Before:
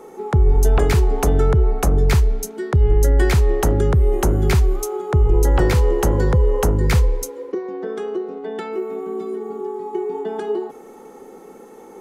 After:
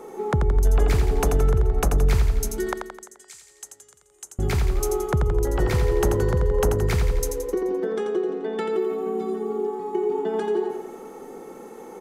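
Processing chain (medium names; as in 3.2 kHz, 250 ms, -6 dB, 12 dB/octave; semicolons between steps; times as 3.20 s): compression, threshold -19 dBFS, peak gain reduction 9 dB; 2.73–4.39 s: band-pass filter 7.6 kHz, Q 3; feedback delay 86 ms, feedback 55%, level -6 dB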